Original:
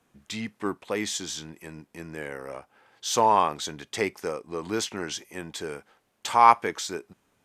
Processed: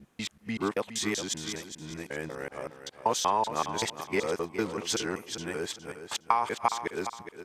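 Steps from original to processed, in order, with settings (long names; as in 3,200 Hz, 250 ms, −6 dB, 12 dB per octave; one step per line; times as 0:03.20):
reversed piece by piece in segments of 191 ms
downward compressor 5 to 1, threshold −22 dBFS, peak gain reduction 11 dB
on a send: repeating echo 413 ms, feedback 28%, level −10.5 dB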